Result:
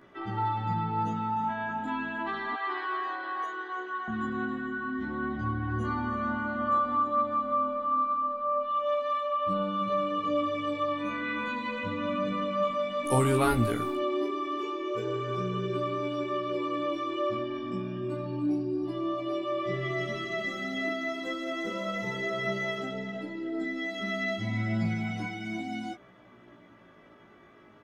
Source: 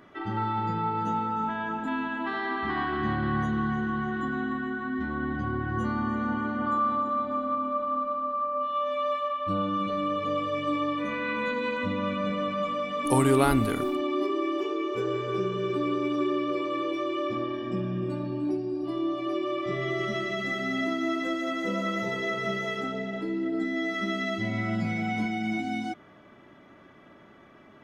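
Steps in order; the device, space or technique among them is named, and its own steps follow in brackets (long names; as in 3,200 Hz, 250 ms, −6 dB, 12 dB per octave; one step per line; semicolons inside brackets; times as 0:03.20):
0:02.53–0:04.08: Butterworth high-pass 360 Hz 48 dB per octave
double-tracked vocal (double-tracking delay 17 ms −7 dB; chorus effect 0.31 Hz, delay 15 ms, depth 4.6 ms)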